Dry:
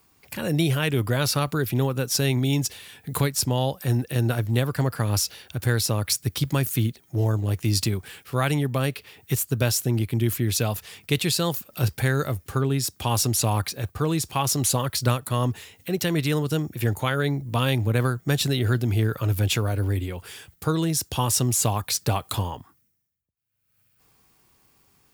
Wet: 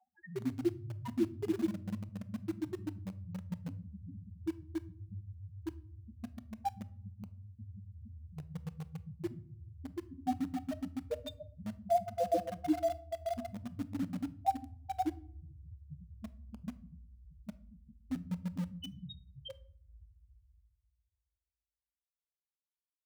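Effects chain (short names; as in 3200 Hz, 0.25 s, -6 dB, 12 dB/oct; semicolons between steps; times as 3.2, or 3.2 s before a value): speed glide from 133% -> 85%; bell 1300 Hz +6 dB 0.33 oct; on a send: multi-head echo 0.138 s, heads all three, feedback 74%, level -6 dB; on the sum: pitch shift -9.5 st; de-hum 142.1 Hz, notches 4; loudest bins only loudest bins 2; high-pass sweep 360 Hz -> 3300 Hz, 20.35–22.09; in parallel at -9 dB: bit-crush 6-bit; on the sum: shoebox room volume 730 m³, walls furnished, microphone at 0.46 m; gain -2 dB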